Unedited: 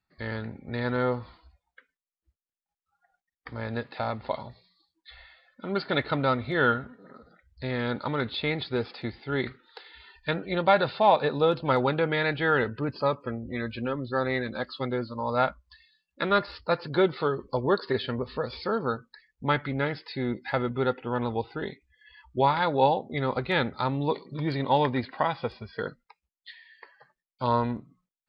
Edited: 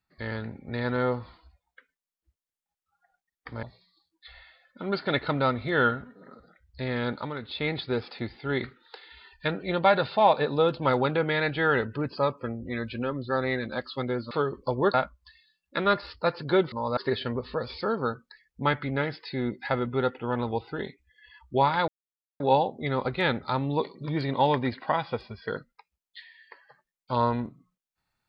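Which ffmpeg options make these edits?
-filter_complex "[0:a]asplit=9[a][b][c][d][e][f][g][h][i];[a]atrim=end=3.632[j];[b]atrim=start=4.458:end=8.22,asetpts=PTS-STARTPTS,afade=t=out:st=3.462:d=0.3:silence=0.375837[k];[c]atrim=start=8.22:end=8.23,asetpts=PTS-STARTPTS,volume=-8.5dB[l];[d]atrim=start=8.23:end=15.142,asetpts=PTS-STARTPTS,afade=t=in:d=0.3:silence=0.375837[m];[e]atrim=start=17.168:end=17.802[n];[f]atrim=start=15.388:end=17.172[o];[g]atrim=start=15.138:end=15.392[p];[h]atrim=start=17.798:end=22.71,asetpts=PTS-STARTPTS,afade=t=out:st=4.908:d=0.004:c=hsin,apad=pad_dur=0.52[q];[i]atrim=start=22.71,asetpts=PTS-STARTPTS,afade=t=in:d=0.004:c=hsin[r];[k][l][m]concat=n=3:v=0:a=1[s];[j][s]acrossfade=d=0.004:c1=hsin:c2=hsin[t];[t][n]acrossfade=d=0.004:c1=hsin:c2=hsin[u];[u][o]acrossfade=d=0.004:c1=hsin:c2=hsin[v];[v][p]acrossfade=d=0.004:c1=hsin:c2=hsin[w];[q][r]concat=n=2:v=0:a=1[x];[w][x]acrossfade=d=0.004:c1=hsin:c2=hsin"

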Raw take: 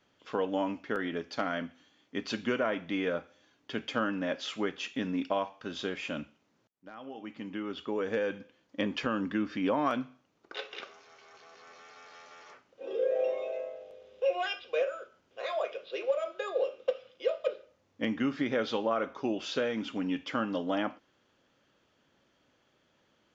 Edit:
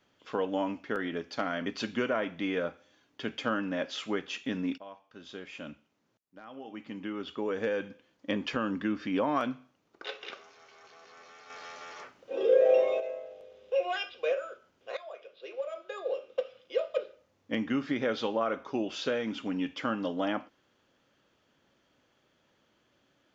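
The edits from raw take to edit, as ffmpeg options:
-filter_complex "[0:a]asplit=6[a][b][c][d][e][f];[a]atrim=end=1.662[g];[b]atrim=start=2.158:end=5.28,asetpts=PTS-STARTPTS,afade=t=out:st=3.118:d=0.004:c=hsin:silence=0.11885[h];[c]atrim=start=5.28:end=12.002,asetpts=PTS-STARTPTS,afade=t=in:d=2.01:silence=0.11885[i];[d]atrim=start=11.998:end=13.502,asetpts=PTS-STARTPTS,volume=7dB[j];[e]atrim=start=13.498:end=15.47,asetpts=PTS-STARTPTS,afade=t=out:st=1.968:d=0.004:c=hsin:silence=0.177828[k];[f]atrim=start=15.47,asetpts=PTS-STARTPTS,afade=t=in:d=1.79:silence=0.177828[l];[h][i]concat=n=2:v=0:a=1[m];[g][m]acrossfade=d=0.004:c1=hsin:c2=hsin[n];[n][j]acrossfade=d=0.004:c1=hsin:c2=hsin[o];[k][l]concat=n=2:v=0:a=1[p];[o][p]acrossfade=d=0.004:c1=hsin:c2=hsin"

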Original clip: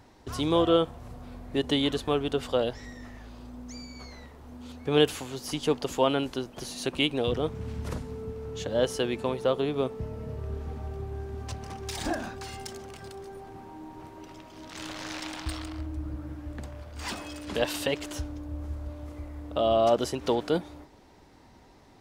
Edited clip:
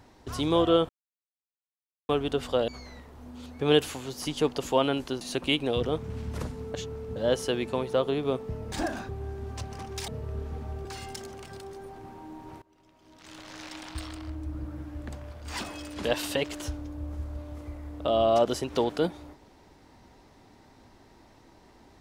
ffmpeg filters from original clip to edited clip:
-filter_complex "[0:a]asplit=12[a][b][c][d][e][f][g][h][i][j][k][l];[a]atrim=end=0.89,asetpts=PTS-STARTPTS,afade=t=out:st=0.886:d=0.004:c=hsin[m];[b]atrim=start=0.89:end=2.09,asetpts=PTS-STARTPTS,volume=0[n];[c]atrim=start=2.09:end=2.682,asetpts=PTS-STARTPTS,afade=t=in:d=0.004:c=hsin[o];[d]atrim=start=3.938:end=6.472[p];[e]atrim=start=6.718:end=8.252[q];[f]atrim=start=8.248:end=8.672,asetpts=PTS-STARTPTS,areverse[r];[g]atrim=start=8.668:end=10.232[s];[h]atrim=start=11.988:end=12.362[t];[i]atrim=start=10.998:end=11.992[u];[j]atrim=start=10.228:end=11.002[v];[k]atrim=start=12.358:end=14.13,asetpts=PTS-STARTPTS,afade=t=out:st=1.768:d=0.004:c=hsin:silence=0.0707946[w];[l]atrim=start=14.13,asetpts=PTS-STARTPTS,afade=t=in:d=2.07:silence=0.0707946[x];[m][n][o]concat=n=3:v=0:a=1[y];[y][p]acrossfade=d=0.004:c1=hsin:c2=hsin[z];[z][q]acrossfade=d=0.004:c1=hsin:c2=hsin[aa];[aa][r]acrossfade=d=0.004:c1=hsin:c2=hsin[ab];[ab][s]acrossfade=d=0.004:c1=hsin:c2=hsin[ac];[ac][t]acrossfade=d=0.004:c1=hsin:c2=hsin[ad];[ad][u]acrossfade=d=0.004:c1=hsin:c2=hsin[ae];[ae][v]acrossfade=d=0.004:c1=hsin:c2=hsin[af];[w][x]concat=n=2:v=0:a=1[ag];[af][ag]acrossfade=d=0.004:c1=hsin:c2=hsin"

